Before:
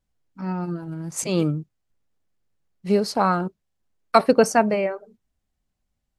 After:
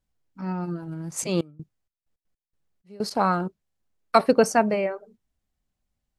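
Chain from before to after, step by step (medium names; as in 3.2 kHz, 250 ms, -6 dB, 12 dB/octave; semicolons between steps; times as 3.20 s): 1.34–3.10 s: trance gate "..x.x..xxx" 160 bpm -24 dB; trim -2 dB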